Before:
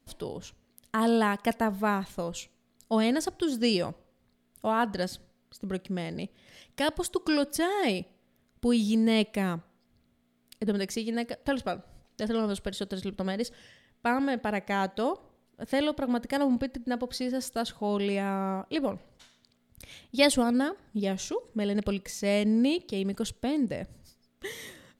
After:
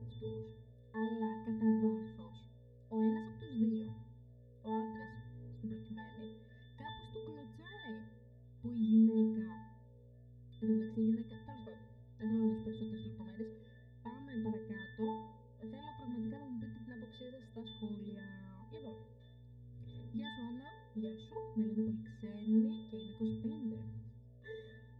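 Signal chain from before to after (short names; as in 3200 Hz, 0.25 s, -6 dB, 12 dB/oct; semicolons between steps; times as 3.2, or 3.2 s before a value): buzz 60 Hz, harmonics 11, -43 dBFS -4 dB/oct; phaser 0.55 Hz, delay 2 ms, feedback 67%; compressor 10:1, threshold -26 dBFS, peak gain reduction 14.5 dB; octave resonator A, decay 0.65 s; gain +6.5 dB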